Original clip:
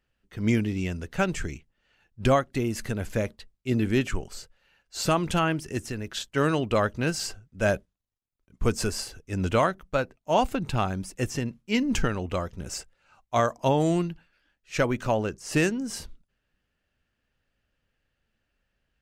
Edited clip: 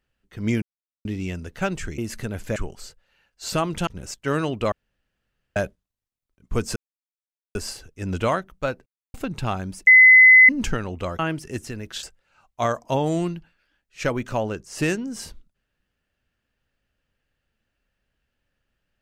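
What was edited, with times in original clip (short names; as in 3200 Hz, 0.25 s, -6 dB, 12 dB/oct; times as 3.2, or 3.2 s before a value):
0.62 insert silence 0.43 s
1.55–2.64 cut
3.22–4.09 cut
5.4–6.24 swap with 12.5–12.77
6.82–7.66 room tone
8.86 insert silence 0.79 s
10.17–10.45 mute
11.18–11.8 bleep 2030 Hz -7 dBFS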